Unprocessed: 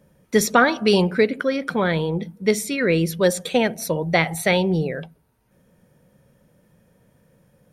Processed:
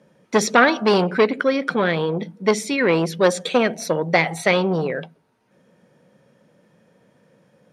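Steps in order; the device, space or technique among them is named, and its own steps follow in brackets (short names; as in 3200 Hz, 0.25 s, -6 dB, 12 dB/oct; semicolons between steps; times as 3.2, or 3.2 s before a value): public-address speaker with an overloaded transformer (core saturation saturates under 1000 Hz; BPF 200–6200 Hz); gain +4 dB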